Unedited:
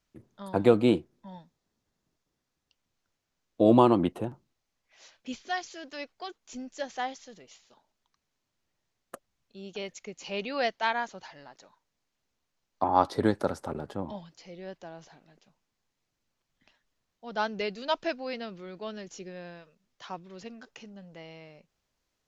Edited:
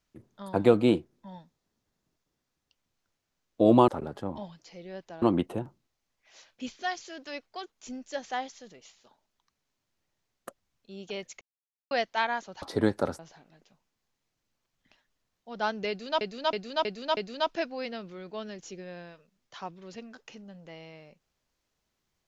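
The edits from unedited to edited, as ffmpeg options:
-filter_complex "[0:a]asplit=11[a][b][c][d][e][f][g][h][i][j][k];[a]atrim=end=3.882[l];[b]atrim=start=13.608:end=14.952[m];[c]atrim=start=3.878:end=10.07,asetpts=PTS-STARTPTS,afade=t=out:st=6.188:d=0.004:c=hsin[n];[d]atrim=start=10.07:end=10.57,asetpts=PTS-STARTPTS,volume=0[o];[e]atrim=start=10.57:end=11.282,asetpts=PTS-STARTPTS,afade=t=in:d=0.004:c=hsin[p];[f]atrim=start=13.038:end=13.612[q];[g]atrim=start=14.948:end=17.972[r];[h]atrim=start=17.648:end=17.972[s];[i]atrim=start=17.648:end=17.972[t];[j]atrim=start=17.648:end=17.972[u];[k]atrim=start=17.648[v];[l][m]acrossfade=d=0.004:c1=hsin:c2=hsin[w];[n][o][p]concat=n=3:v=0:a=1[x];[w][x]acrossfade=d=0.004:c1=hsin:c2=hsin[y];[y][q]acrossfade=d=0.004:c1=hsin:c2=hsin[z];[z][r]acrossfade=d=0.004:c1=hsin:c2=hsin[aa];[aa][s]acrossfade=d=0.004:c1=hsin:c2=hsin[ab];[ab][t]acrossfade=d=0.004:c1=hsin:c2=hsin[ac];[ac][u]acrossfade=d=0.004:c1=hsin:c2=hsin[ad];[ad][v]acrossfade=d=0.004:c1=hsin:c2=hsin"

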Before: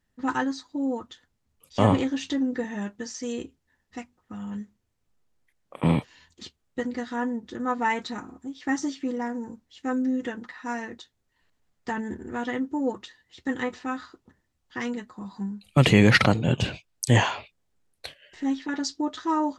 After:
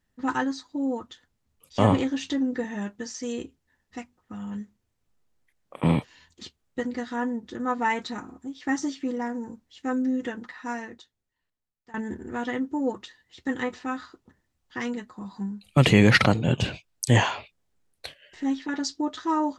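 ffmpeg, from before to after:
-filter_complex "[0:a]asplit=2[a][b];[a]atrim=end=11.94,asetpts=PTS-STARTPTS,afade=t=out:st=10.65:d=1.29:c=qua:silence=0.0891251[c];[b]atrim=start=11.94,asetpts=PTS-STARTPTS,afade=t=in:d=0.004:c=hsin:silence=0.0891251[d];[c][d]concat=n=2:v=0:a=1"

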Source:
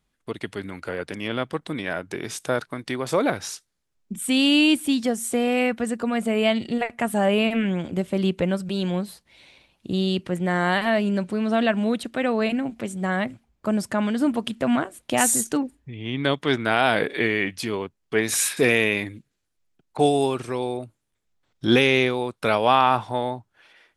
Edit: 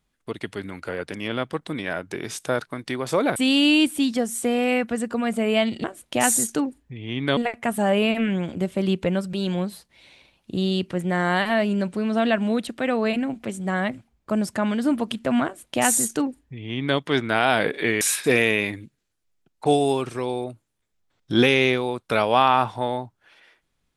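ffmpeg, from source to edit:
-filter_complex "[0:a]asplit=5[a][b][c][d][e];[a]atrim=end=3.362[f];[b]atrim=start=4.248:end=6.732[g];[c]atrim=start=14.808:end=16.342[h];[d]atrim=start=6.728:end=17.372[i];[e]atrim=start=18.338[j];[f][g]acrossfade=d=0.004:c1=hsin:c2=hsin[k];[k][h]acrossfade=d=0.004:c1=hsin:c2=hsin[l];[l][i]acrossfade=d=0.004:c1=hsin:c2=hsin[m];[m][j]acrossfade=d=0.004:c1=hsin:c2=hsin"

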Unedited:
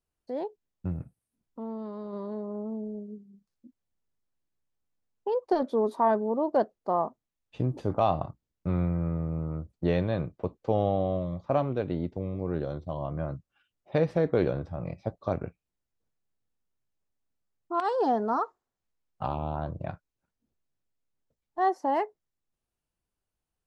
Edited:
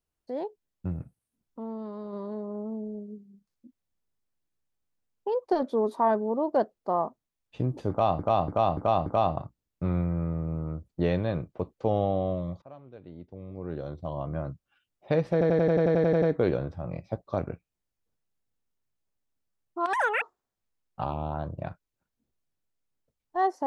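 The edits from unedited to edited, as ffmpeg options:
-filter_complex "[0:a]asplit=18[a][b][c][d][e][f][g][h][i][j][k][l][m][n][o][p][q][r];[a]atrim=end=8.192[s];[b]atrim=start=7.898:end=8.192[t];[c]atrim=start=7.898:end=8.192[u];[d]atrim=start=7.898:end=8.192[v];[e]atrim=start=7.898:end=11.46,asetpts=PTS-STARTPTS,afade=t=out:st=3.558:d=0.004:c=hsin:silence=0.0794328[w];[f]atrim=start=11.46:end=14.252,asetpts=PTS-STARTPTS,afade=t=in:d=1.46:c=qua:silence=0.0794328[x];[g]atrim=start=14.158:end=14.252[y];[h]atrim=start=14.158:end=14.252[z];[i]atrim=start=14.158:end=14.252[aa];[j]atrim=start=14.158:end=14.252[ab];[k]atrim=start=14.158:end=14.252[ac];[l]atrim=start=14.158:end=14.252[ad];[m]atrim=start=14.158:end=14.252[ae];[n]atrim=start=14.158:end=14.252[af];[o]atrim=start=14.158:end=14.252[ag];[p]atrim=start=14.158:end=17.874[ah];[q]atrim=start=17.87:end=18.44,asetpts=PTS-STARTPTS,asetrate=87759,aresample=44100[ai];[r]atrim=start=18.436[aj];[s][t]acrossfade=d=0.004:c1=hsin:c2=hsin[ak];[ak][u]acrossfade=d=0.004:c1=hsin:c2=hsin[al];[al][v]acrossfade=d=0.004:c1=hsin:c2=hsin[am];[w][x]concat=n=2:v=0:a=1[an];[am][an]acrossfade=d=0.004:c1=hsin:c2=hsin[ao];[ao][y]acrossfade=d=0.004:c1=hsin:c2=hsin[ap];[ap][z]acrossfade=d=0.004:c1=hsin:c2=hsin[aq];[aq][aa]acrossfade=d=0.004:c1=hsin:c2=hsin[ar];[ar][ab]acrossfade=d=0.004:c1=hsin:c2=hsin[as];[as][ac]acrossfade=d=0.004:c1=hsin:c2=hsin[at];[at][ad]acrossfade=d=0.004:c1=hsin:c2=hsin[au];[au][ae]acrossfade=d=0.004:c1=hsin:c2=hsin[av];[av][af]acrossfade=d=0.004:c1=hsin:c2=hsin[aw];[aw][ag]acrossfade=d=0.004:c1=hsin:c2=hsin[ax];[ax][ah]acrossfade=d=0.004:c1=hsin:c2=hsin[ay];[ay][ai]acrossfade=d=0.004:c1=hsin:c2=hsin[az];[az][aj]acrossfade=d=0.004:c1=hsin:c2=hsin"

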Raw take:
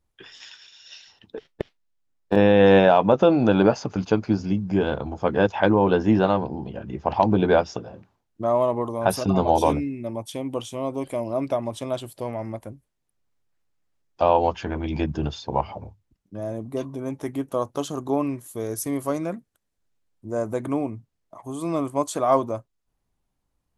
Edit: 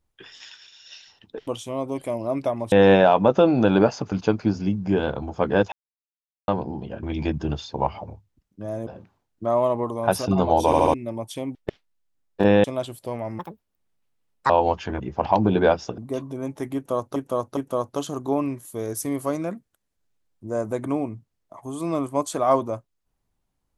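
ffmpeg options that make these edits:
-filter_complex "[0:a]asplit=19[a][b][c][d][e][f][g][h][i][j][k][l][m][n][o][p][q][r][s];[a]atrim=end=1.472[t];[b]atrim=start=10.528:end=11.782[u];[c]atrim=start=2.558:end=5.56,asetpts=PTS-STARTPTS,afade=t=out:st=2.998:d=0.004:c=hsin[v];[d]atrim=start=5.56:end=6.32,asetpts=PTS-STARTPTS,volume=0[w];[e]atrim=start=6.32:end=6.872,asetpts=PTS-STARTPTS,afade=t=in:d=0.004:c=hsin[x];[f]atrim=start=14.768:end=16.612[y];[g]atrim=start=7.848:end=9.712[z];[h]atrim=start=9.638:end=9.712[aa];[i]atrim=start=9.638:end=9.712[ab];[j]atrim=start=9.638:end=9.712[ac];[k]atrim=start=9.918:end=10.532[ad];[l]atrim=start=1.468:end=2.562[ae];[m]atrim=start=11.778:end=12.534[af];[n]atrim=start=12.53:end=14.27,asetpts=PTS-STARTPTS,asetrate=69237,aresample=44100,atrim=end_sample=48875,asetpts=PTS-STARTPTS[ag];[o]atrim=start=14.266:end=14.772[ah];[p]atrim=start=6.868:end=7.852[ai];[q]atrim=start=16.608:end=17.792[aj];[r]atrim=start=17.378:end=17.792[ak];[s]atrim=start=17.378[al];[t][u]acrossfade=d=0.004:c1=hsin:c2=hsin[am];[v][w][x]concat=n=3:v=0:a=1[an];[am][an]acrossfade=d=0.004:c1=hsin:c2=hsin[ao];[ao][y]acrossfade=d=0.004:c1=hsin:c2=hsin[ap];[ap][z]acrossfade=d=0.004:c1=hsin:c2=hsin[aq];[aq][aa]acrossfade=d=0.004:c1=hsin:c2=hsin[ar];[ar][ab]acrossfade=d=0.004:c1=hsin:c2=hsin[as];[as][ac]acrossfade=d=0.004:c1=hsin:c2=hsin[at];[at][ad]acrossfade=d=0.004:c1=hsin:c2=hsin[au];[au][ae]acrossfade=d=0.004:c1=hsin:c2=hsin[av];[av][af]acrossfade=d=0.004:c1=hsin:c2=hsin[aw];[aw][ag]acrossfade=d=0.004:c1=hsin:c2=hsin[ax];[ax][ah]acrossfade=d=0.004:c1=hsin:c2=hsin[ay];[ay][ai]acrossfade=d=0.004:c1=hsin:c2=hsin[az];[az][aj]acrossfade=d=0.004:c1=hsin:c2=hsin[ba];[ba][ak]acrossfade=d=0.004:c1=hsin:c2=hsin[bb];[bb][al]acrossfade=d=0.004:c1=hsin:c2=hsin"

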